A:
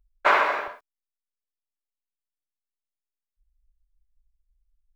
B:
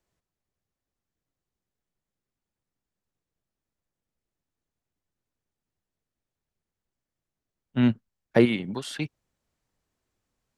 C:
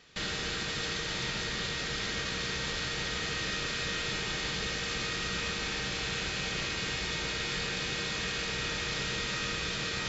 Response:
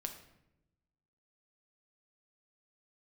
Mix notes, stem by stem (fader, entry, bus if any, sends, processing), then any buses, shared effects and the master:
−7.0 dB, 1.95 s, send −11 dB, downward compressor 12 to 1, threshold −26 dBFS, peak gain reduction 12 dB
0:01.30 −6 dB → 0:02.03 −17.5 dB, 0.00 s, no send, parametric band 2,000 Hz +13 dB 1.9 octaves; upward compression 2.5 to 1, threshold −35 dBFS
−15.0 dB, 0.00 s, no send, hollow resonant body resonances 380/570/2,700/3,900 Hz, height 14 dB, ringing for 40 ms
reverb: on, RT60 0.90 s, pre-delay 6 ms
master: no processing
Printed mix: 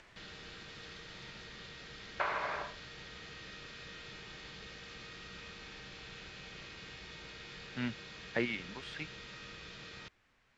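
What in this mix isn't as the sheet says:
stem C: missing hollow resonant body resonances 380/570/2,700/3,900 Hz, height 14 dB, ringing for 40 ms
master: extra low-pass filter 5,100 Hz 12 dB per octave

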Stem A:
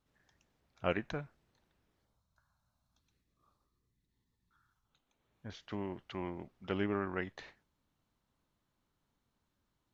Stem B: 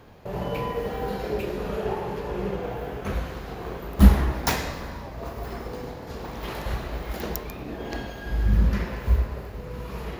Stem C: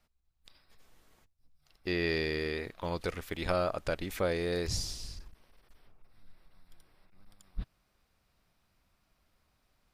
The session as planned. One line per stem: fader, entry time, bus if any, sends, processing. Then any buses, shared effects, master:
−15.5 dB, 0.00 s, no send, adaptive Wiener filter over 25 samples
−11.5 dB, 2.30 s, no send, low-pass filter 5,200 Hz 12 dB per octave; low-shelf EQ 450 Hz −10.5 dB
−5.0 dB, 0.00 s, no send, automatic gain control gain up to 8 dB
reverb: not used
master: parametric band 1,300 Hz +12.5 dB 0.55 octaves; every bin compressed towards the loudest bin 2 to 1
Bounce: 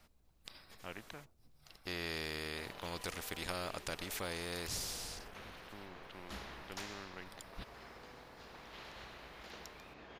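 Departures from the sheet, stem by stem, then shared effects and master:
stem B −11.5 dB → −23.0 dB
stem C: missing automatic gain control gain up to 8 dB
master: missing parametric band 1,300 Hz +12.5 dB 0.55 octaves

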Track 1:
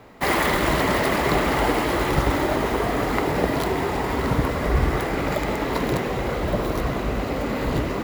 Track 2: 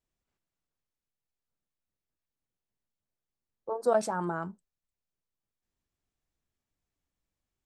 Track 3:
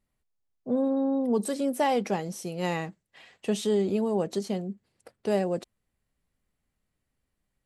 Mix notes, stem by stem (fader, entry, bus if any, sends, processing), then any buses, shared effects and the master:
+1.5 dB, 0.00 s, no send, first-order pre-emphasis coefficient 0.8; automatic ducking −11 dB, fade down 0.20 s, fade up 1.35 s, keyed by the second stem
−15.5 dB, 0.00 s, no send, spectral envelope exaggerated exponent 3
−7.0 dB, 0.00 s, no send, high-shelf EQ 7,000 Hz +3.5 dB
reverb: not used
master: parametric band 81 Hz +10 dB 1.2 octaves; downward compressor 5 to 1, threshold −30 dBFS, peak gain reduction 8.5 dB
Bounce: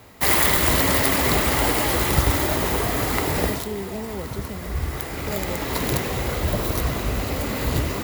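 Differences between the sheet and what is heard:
stem 1 +1.5 dB → +10.5 dB
master: missing downward compressor 5 to 1, threshold −30 dBFS, peak gain reduction 8.5 dB

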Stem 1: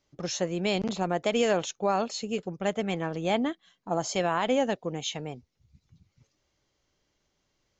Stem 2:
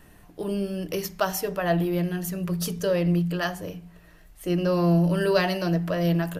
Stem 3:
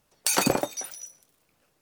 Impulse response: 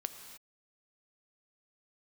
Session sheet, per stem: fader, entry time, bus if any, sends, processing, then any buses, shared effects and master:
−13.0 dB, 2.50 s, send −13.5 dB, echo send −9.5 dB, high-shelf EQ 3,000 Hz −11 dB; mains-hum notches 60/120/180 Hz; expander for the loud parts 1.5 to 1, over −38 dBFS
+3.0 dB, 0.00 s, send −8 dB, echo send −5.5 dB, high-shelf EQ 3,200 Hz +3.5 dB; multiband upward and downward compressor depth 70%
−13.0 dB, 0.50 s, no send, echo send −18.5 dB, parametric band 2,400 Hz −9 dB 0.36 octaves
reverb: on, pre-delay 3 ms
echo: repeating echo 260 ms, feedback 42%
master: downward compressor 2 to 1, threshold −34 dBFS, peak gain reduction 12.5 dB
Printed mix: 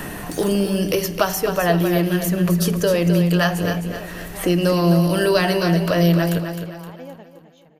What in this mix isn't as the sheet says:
stem 3: entry 0.50 s → 0.05 s
master: missing downward compressor 2 to 1, threshold −34 dBFS, peak gain reduction 12.5 dB

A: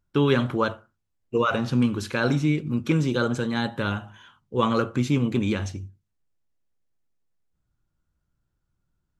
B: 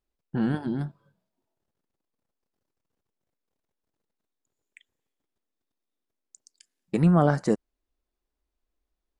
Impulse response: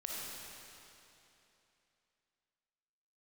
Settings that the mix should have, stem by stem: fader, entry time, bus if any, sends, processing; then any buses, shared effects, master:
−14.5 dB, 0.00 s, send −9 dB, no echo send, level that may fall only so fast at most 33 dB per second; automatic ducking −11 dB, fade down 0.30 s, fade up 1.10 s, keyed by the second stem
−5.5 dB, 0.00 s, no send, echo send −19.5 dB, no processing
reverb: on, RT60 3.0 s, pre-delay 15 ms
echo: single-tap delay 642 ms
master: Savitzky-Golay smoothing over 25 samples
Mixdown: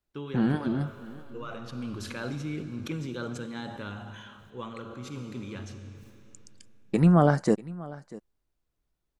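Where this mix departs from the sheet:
stem B −5.5 dB → +0.5 dB
master: missing Savitzky-Golay smoothing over 25 samples

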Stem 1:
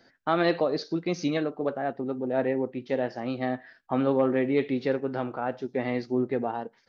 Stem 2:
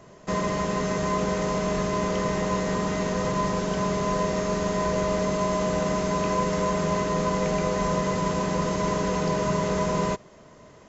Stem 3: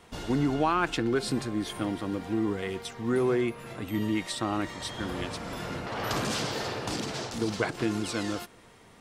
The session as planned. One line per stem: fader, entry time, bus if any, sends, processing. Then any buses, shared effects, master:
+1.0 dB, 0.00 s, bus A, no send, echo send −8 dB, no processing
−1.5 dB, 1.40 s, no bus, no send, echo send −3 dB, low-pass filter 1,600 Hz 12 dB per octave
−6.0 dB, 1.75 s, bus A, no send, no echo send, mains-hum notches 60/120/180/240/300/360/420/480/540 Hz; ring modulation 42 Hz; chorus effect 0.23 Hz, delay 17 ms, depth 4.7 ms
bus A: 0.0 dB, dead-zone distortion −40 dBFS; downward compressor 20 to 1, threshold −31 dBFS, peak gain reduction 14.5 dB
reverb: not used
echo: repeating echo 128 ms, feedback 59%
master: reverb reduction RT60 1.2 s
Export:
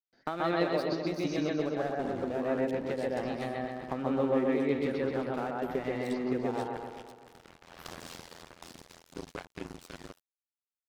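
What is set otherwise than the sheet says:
stem 2: muted
stem 3: missing chorus effect 0.23 Hz, delay 17 ms, depth 4.7 ms
master: missing reverb reduction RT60 1.2 s

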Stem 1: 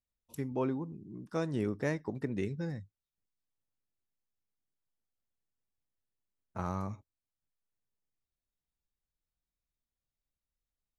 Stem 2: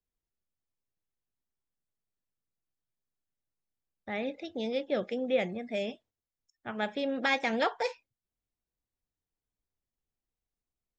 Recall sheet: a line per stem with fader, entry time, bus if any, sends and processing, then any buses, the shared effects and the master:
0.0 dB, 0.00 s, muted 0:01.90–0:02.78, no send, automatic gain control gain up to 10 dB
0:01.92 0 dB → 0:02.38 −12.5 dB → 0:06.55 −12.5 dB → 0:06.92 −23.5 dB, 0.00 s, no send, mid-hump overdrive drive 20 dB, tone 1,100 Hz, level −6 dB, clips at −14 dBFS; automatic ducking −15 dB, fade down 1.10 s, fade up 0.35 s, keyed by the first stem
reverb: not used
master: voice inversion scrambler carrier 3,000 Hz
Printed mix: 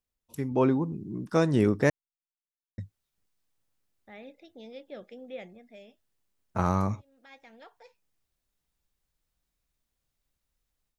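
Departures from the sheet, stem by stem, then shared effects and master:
stem 2: missing mid-hump overdrive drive 20 dB, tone 1,100 Hz, level −6 dB, clips at −14 dBFS
master: missing voice inversion scrambler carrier 3,000 Hz

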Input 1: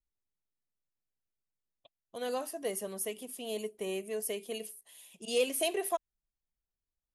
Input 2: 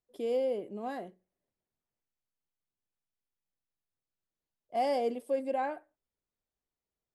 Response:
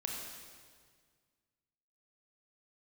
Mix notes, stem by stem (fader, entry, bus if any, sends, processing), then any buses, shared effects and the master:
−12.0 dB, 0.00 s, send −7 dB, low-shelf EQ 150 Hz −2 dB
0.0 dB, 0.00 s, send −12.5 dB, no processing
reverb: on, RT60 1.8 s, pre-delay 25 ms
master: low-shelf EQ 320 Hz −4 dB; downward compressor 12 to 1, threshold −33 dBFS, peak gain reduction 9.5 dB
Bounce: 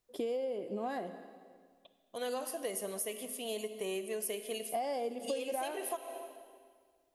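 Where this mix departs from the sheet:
stem 1 −12.0 dB → −0.5 dB
stem 2 0.0 dB → +7.5 dB

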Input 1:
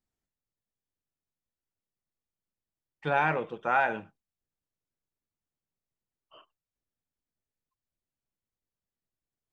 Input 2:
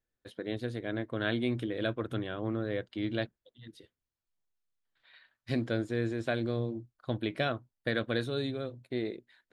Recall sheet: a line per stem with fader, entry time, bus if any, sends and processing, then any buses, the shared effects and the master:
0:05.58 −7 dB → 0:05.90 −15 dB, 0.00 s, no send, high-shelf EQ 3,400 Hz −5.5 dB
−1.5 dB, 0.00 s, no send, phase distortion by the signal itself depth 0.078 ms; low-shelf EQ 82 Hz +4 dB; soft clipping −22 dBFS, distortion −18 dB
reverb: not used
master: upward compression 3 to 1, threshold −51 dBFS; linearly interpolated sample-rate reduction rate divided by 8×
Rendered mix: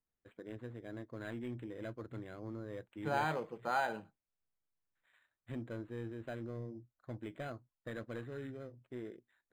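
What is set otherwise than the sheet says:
stem 2 −1.5 dB → −10.5 dB
master: missing upward compression 3 to 1, threshold −51 dBFS

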